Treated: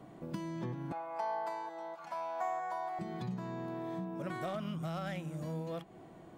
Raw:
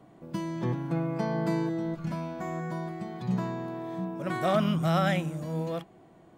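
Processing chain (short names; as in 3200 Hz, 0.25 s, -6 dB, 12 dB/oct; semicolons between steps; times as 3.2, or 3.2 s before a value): tracing distortion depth 0.027 ms; compressor 6:1, threshold -39 dBFS, peak gain reduction 17 dB; 0.92–2.99 resonant high-pass 810 Hz, resonance Q 4.9; gain +2 dB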